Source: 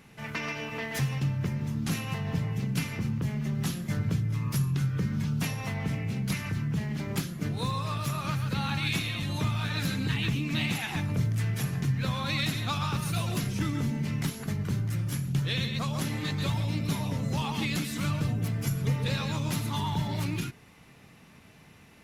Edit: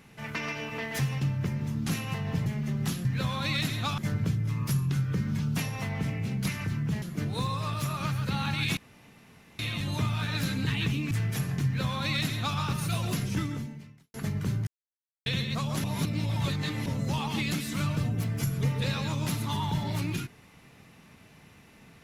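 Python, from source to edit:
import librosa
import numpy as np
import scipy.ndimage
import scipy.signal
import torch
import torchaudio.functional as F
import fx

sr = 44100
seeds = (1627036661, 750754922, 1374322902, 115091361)

y = fx.edit(x, sr, fx.cut(start_s=2.46, length_s=0.78),
    fx.cut(start_s=6.87, length_s=0.39),
    fx.insert_room_tone(at_s=9.01, length_s=0.82),
    fx.cut(start_s=10.53, length_s=0.82),
    fx.duplicate(start_s=11.89, length_s=0.93, to_s=3.83),
    fx.fade_out_span(start_s=13.62, length_s=0.76, curve='qua'),
    fx.silence(start_s=14.91, length_s=0.59),
    fx.reverse_span(start_s=16.08, length_s=1.02), tone=tone)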